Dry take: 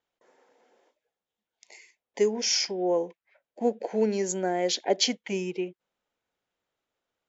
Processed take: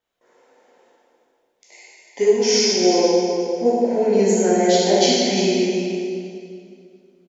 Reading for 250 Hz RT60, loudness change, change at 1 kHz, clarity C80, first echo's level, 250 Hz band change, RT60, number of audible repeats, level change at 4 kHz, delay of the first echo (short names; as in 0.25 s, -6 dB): 2.6 s, +10.0 dB, +10.5 dB, -1.5 dB, -8.5 dB, +12.0 dB, 2.4 s, 1, +8.0 dB, 0.352 s